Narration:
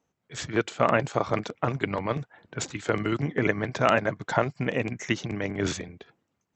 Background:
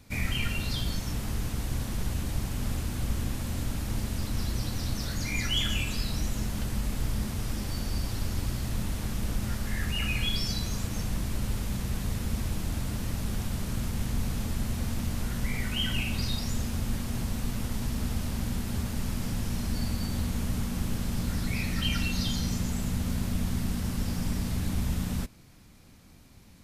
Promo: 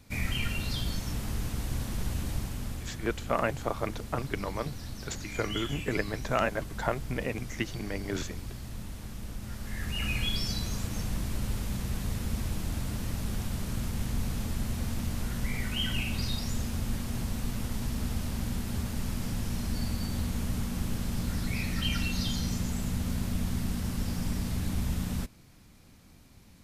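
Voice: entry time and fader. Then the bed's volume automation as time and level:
2.50 s, −6.0 dB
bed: 0:02.32 −1.5 dB
0:03.02 −9 dB
0:09.41 −9 dB
0:10.08 −1.5 dB

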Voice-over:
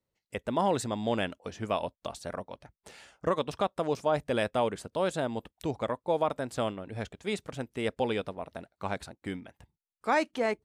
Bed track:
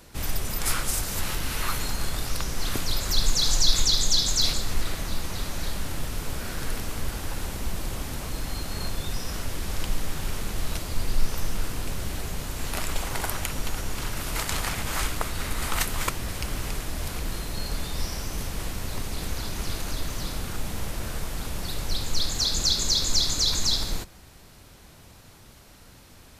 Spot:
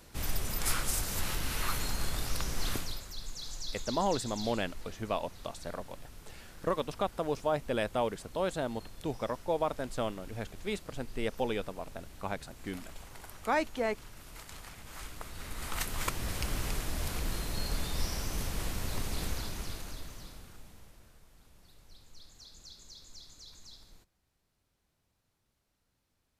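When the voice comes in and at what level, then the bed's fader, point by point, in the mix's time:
3.40 s, −3.0 dB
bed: 0:02.72 −5 dB
0:03.11 −19.5 dB
0:14.80 −19.5 dB
0:16.30 −3.5 dB
0:19.24 −3.5 dB
0:21.20 −28.5 dB

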